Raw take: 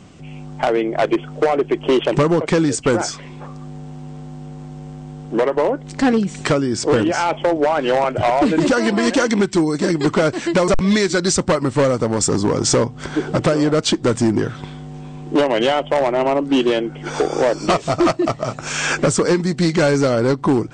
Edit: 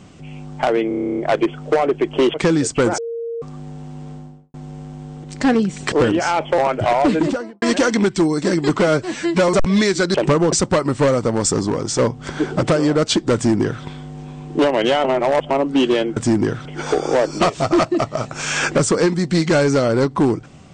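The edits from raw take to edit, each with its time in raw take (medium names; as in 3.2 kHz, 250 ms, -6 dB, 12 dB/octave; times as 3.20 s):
0.88 s: stutter 0.03 s, 11 plays
2.04–2.42 s: move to 11.29 s
3.06–3.50 s: bleep 463 Hz -23 dBFS
4.17–4.62 s: studio fade out
5.32–5.82 s: delete
6.50–6.84 s: delete
7.50–7.95 s: delete
8.46–8.99 s: studio fade out
10.18–10.63 s: stretch 1.5×
12.22–12.75 s: fade out, to -7.5 dB
14.11–14.60 s: copy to 16.93 s
15.81–16.27 s: reverse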